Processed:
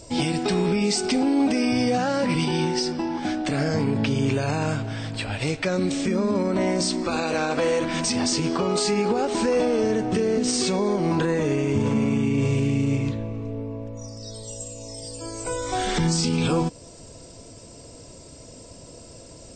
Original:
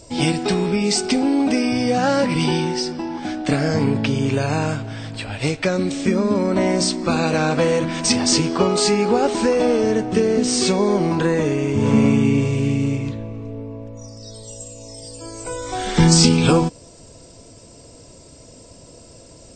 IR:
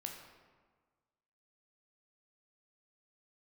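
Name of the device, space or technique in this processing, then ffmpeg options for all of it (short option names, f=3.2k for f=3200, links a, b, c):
stacked limiters: -filter_complex "[0:a]asettb=1/sr,asplit=3[a][b][c];[a]atrim=end=7.034[d];[b]atrim=start=7.03:end=7.94,asetpts=PTS-STARTPTS,afade=t=in:d=0.004:c=qsin,afade=t=out:st=0.906:d=0.004:c=qsin,equalizer=f=160:w=1.5:g=-10[e];[c]atrim=start=7.936[f];[d][e]acrossfade=d=0.004:c1=hsin:c2=qsin[g];[g][f]acrossfade=d=0.004:c1=qsin:c2=hsin,alimiter=limit=-8dB:level=0:latency=1:release=407,alimiter=limit=-14dB:level=0:latency=1:release=67"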